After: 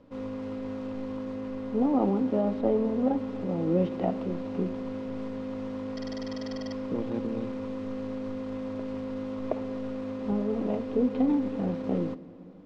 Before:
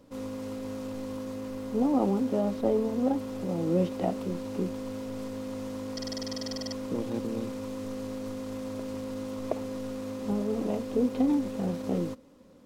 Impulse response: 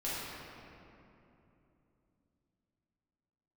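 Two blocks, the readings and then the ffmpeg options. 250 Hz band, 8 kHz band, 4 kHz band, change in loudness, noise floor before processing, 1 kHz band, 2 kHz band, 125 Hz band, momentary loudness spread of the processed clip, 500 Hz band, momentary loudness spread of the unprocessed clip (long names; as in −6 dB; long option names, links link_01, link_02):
+1.0 dB, below −10 dB, −6.5 dB, +1.0 dB, −41 dBFS, +0.5 dB, 0.0 dB, +0.5 dB, 10 LU, +0.5 dB, 10 LU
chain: -filter_complex "[0:a]lowpass=3000,asplit=2[link_01][link_02];[1:a]atrim=start_sample=2205[link_03];[link_02][link_03]afir=irnorm=-1:irlink=0,volume=-19.5dB[link_04];[link_01][link_04]amix=inputs=2:normalize=0"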